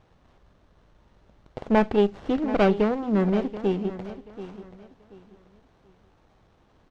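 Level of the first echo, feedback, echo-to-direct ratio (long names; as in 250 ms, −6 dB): −14.0 dB, 28%, −13.5 dB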